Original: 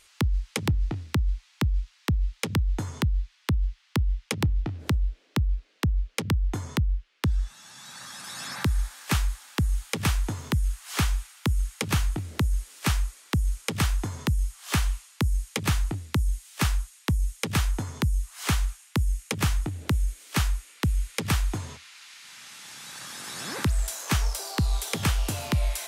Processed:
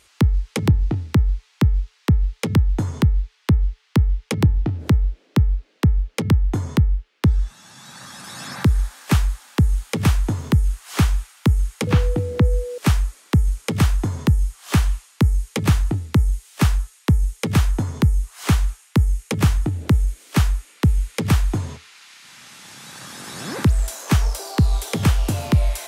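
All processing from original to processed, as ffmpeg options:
ffmpeg -i in.wav -filter_complex "[0:a]asettb=1/sr,asplit=3[link_01][link_02][link_03];[link_01]atrim=end=11.874[link_04];[link_02]atrim=start=11.87:end=12.78,asetpts=PTS-STARTPTS,afade=type=in:duration=0.004:curve=qsin,afade=type=out:start_time=0.906:duration=0.004:curve=qsin,acrossover=split=4600[link_05][link_06];[link_06]acompressor=threshold=-46dB:ratio=4:attack=1:release=60[link_07];[link_05][link_07]amix=inputs=2:normalize=0,aeval=exprs='val(0)+0.02*sin(2*PI*490*n/s)':channel_layout=same[link_08];[link_03]atrim=start=12.776[link_09];[link_04][link_08]acrossfade=duration=0.004:curve1=hsin:curve2=qsin[link_10];[link_10][link_09]acrossfade=duration=0.004:curve1=qsin:curve2=hsin,highpass=52,tiltshelf=frequency=760:gain=4.5,bandreject=frequency=433:width_type=h:width=4,bandreject=frequency=866:width_type=h:width=4,bandreject=frequency=1299:width_type=h:width=4,bandreject=frequency=1732:width_type=h:width=4,bandreject=frequency=2165:width_type=h:width=4,volume=5.5dB" out.wav

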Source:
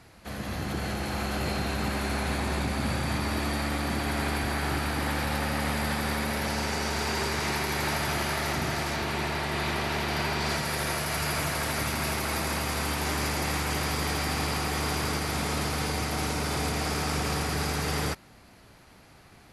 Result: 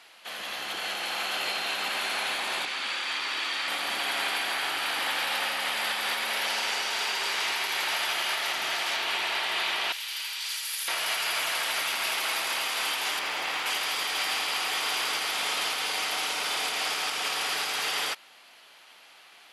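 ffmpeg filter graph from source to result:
ffmpeg -i in.wav -filter_complex "[0:a]asettb=1/sr,asplit=3[link_01][link_02][link_03];[link_01]atrim=end=2.654[link_04];[link_02]atrim=start=2.65:end=3.68,asetpts=PTS-STARTPTS,afade=type=in:duration=0.004:curve=qsin,afade=type=out:start_time=1.026:duration=0.004:curve=qsin,highpass=310,lowpass=7200,equalizer=frequency=660:width=1.7:gain=-8[link_05];[link_03]atrim=start=3.676[link_06];[link_04][link_05]acrossfade=duration=0.004:curve1=hsin:curve2=qsin[link_07];[link_07][link_06]acrossfade=duration=0.004:curve1=qsin:curve2=hsin,asettb=1/sr,asplit=3[link_08][link_09][link_10];[link_08]atrim=end=9.924[link_11];[link_09]atrim=start=9.92:end=10.88,asetpts=PTS-STARTPTS,afade=type=in:duration=0.004:curve=qsin,afade=type=out:start_time=0.956:duration=0.004:curve=qsin,asuperstop=centerf=690:order=4:qfactor=6.2,aderivative[link_12];[link_10]atrim=start=10.876[link_13];[link_11][link_12]acrossfade=duration=0.004:curve1=hsin:curve2=qsin[link_14];[link_14][link_13]acrossfade=duration=0.004:curve1=qsin:curve2=hsin,asettb=1/sr,asplit=3[link_15][link_16][link_17];[link_15]atrim=end=13.194[link_18];[link_16]atrim=start=13.19:end=13.66,asetpts=PTS-STARTPTS,afade=type=in:duration=0.004:curve=qsin,afade=type=out:start_time=0.466:duration=0.004:curve=qsin,highshelf=frequency=4700:gain=-11.5,aeval=exprs='sgn(val(0))*max(abs(val(0))-0.00251,0)':channel_layout=same[link_19];[link_17]atrim=start=13.656[link_20];[link_18][link_19]acrossfade=duration=0.004:curve1=hsin:curve2=qsin[link_21];[link_21][link_20]acrossfade=duration=0.004:curve1=qsin:curve2=hsin,highpass=730,equalizer=frequency=3100:width_type=o:width=0.67:gain=10.5,alimiter=limit=-20dB:level=0:latency=1:release=185,volume=1.5dB" out.wav

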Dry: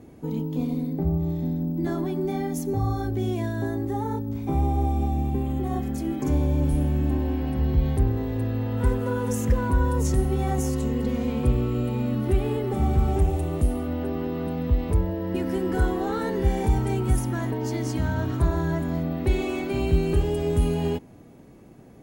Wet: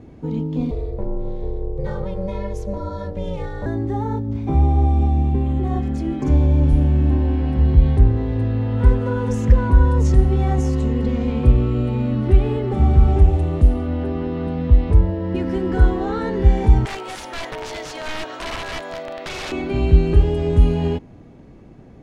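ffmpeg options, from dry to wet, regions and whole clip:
ffmpeg -i in.wav -filter_complex "[0:a]asettb=1/sr,asplit=3[link_01][link_02][link_03];[link_01]atrim=end=0.714[link_04];[link_02]atrim=start=0.71:end=3.66,asetpts=PTS-STARTPTS,afade=type=in:duration=0.004:curve=qsin,afade=type=out:start_time=2.946:duration=0.004:curve=qsin,highpass=190,aeval=exprs='val(0)*sin(2*PI*190*n/s)':channel_layout=same[link_05];[link_03]atrim=start=3.656[link_06];[link_04][link_05]acrossfade=duration=0.004:curve1=hsin:curve2=qsin[link_07];[link_07][link_06]acrossfade=duration=0.004:curve1=qsin:curve2=hsin,asettb=1/sr,asplit=3[link_08][link_09][link_10];[link_08]atrim=end=16.854[link_11];[link_09]atrim=start=16.85:end=19.52,asetpts=PTS-STARTPTS,afade=type=in:duration=0.004:curve=qsin,afade=type=out:start_time=2.666:duration=0.004:curve=qsin,highpass=frequency=550:width_type=q:width=2.6,tiltshelf=frequency=1100:gain=-7,aeval=exprs='(mod(17.8*val(0)+1,2)-1)/17.8':channel_layout=same[link_12];[link_10]atrim=start=19.516[link_13];[link_11][link_12]acrossfade=duration=0.004:curve1=hsin:curve2=qsin[link_14];[link_14][link_13]acrossfade=duration=0.004:curve1=qsin:curve2=hsin,lowpass=4800,lowshelf=frequency=76:gain=11,volume=3dB" out.wav

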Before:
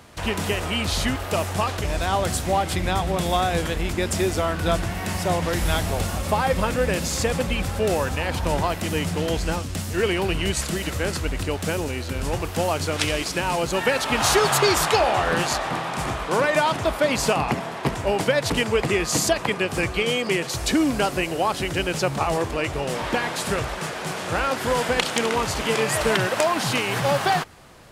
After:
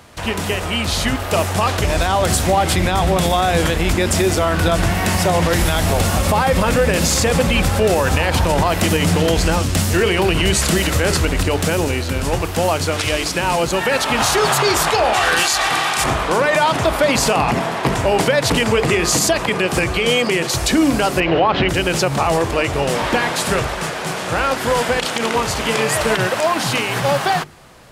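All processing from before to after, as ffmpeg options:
ffmpeg -i in.wav -filter_complex "[0:a]asettb=1/sr,asplit=3[link_01][link_02][link_03];[link_01]atrim=end=15.134[link_04];[link_02]atrim=start=15.13:end=16.04,asetpts=PTS-STARTPTS,afade=type=in:duration=0.004:curve=qsin,afade=type=out:start_time=0.906:duration=0.004:curve=qsin,tiltshelf=frequency=1200:gain=-7.5,aecho=1:1:2.6:0.38,atrim=end_sample=40131[link_05];[link_03]atrim=start=16.036[link_06];[link_04][link_05]acrossfade=duration=0.004:curve1=hsin:curve2=qsin[link_07];[link_07][link_06]acrossfade=duration=0.004:curve1=qsin:curve2=hsin,asettb=1/sr,asplit=3[link_08][link_09][link_10];[link_08]atrim=end=21.204[link_11];[link_09]atrim=start=21.2:end=21.69,asetpts=PTS-STARTPTS,afade=type=in:duration=0.004:curve=qsin,afade=type=out:start_time=0.486:duration=0.004:curve=qsin,lowpass=frequency=3300:width=0.5412,lowpass=frequency=3300:width=1.3066,acontrast=62[link_12];[link_10]atrim=start=21.686[link_13];[link_11][link_12]acrossfade=duration=0.004:curve1=hsin:curve2=qsin[link_14];[link_14][link_13]acrossfade=duration=0.004:curve1=qsin:curve2=hsin,bandreject=frequency=50:width_type=h:width=6,bandreject=frequency=100:width_type=h:width=6,bandreject=frequency=150:width_type=h:width=6,bandreject=frequency=200:width_type=h:width=6,bandreject=frequency=250:width_type=h:width=6,bandreject=frequency=300:width_type=h:width=6,bandreject=frequency=350:width_type=h:width=6,bandreject=frequency=400:width_type=h:width=6,bandreject=frequency=450:width_type=h:width=6,dynaudnorm=framelen=250:gausssize=13:maxgain=11.5dB,alimiter=level_in=9.5dB:limit=-1dB:release=50:level=0:latency=1,volume=-5.5dB" out.wav

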